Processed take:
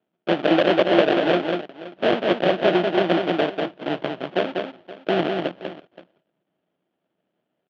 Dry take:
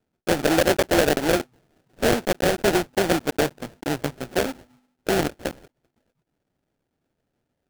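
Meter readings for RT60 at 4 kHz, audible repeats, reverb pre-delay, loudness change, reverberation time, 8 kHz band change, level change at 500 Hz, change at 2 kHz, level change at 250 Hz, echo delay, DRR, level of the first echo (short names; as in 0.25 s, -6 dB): none, 2, none, +1.5 dB, none, under -20 dB, +2.5 dB, 0.0 dB, +2.5 dB, 0.194 s, none, -4.5 dB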